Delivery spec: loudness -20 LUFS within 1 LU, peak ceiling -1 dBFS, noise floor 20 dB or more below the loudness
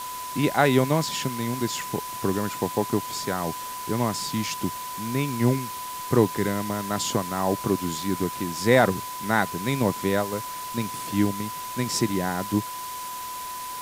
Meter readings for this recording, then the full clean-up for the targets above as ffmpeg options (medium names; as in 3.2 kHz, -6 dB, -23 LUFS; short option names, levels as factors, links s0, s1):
steady tone 1 kHz; tone level -33 dBFS; noise floor -35 dBFS; noise floor target -46 dBFS; loudness -26.0 LUFS; peak level -5.0 dBFS; loudness target -20.0 LUFS
-> -af "bandreject=f=1000:w=30"
-af "afftdn=nr=11:nf=-35"
-af "volume=2,alimiter=limit=0.891:level=0:latency=1"